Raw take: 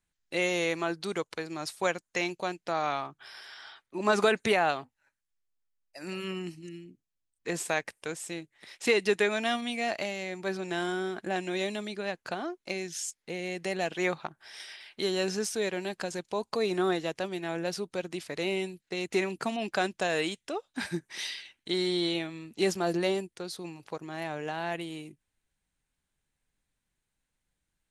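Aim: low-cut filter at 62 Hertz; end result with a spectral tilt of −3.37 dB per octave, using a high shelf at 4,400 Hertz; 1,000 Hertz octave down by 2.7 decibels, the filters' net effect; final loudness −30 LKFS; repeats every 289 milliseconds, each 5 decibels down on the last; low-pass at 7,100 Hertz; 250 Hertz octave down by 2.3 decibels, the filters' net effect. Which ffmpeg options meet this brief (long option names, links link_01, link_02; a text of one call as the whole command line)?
ffmpeg -i in.wav -af "highpass=62,lowpass=7100,equalizer=frequency=250:width_type=o:gain=-3.5,equalizer=frequency=1000:width_type=o:gain=-4,highshelf=frequency=4400:gain=3,aecho=1:1:289|578|867|1156|1445|1734|2023:0.562|0.315|0.176|0.0988|0.0553|0.031|0.0173,volume=1.5dB" out.wav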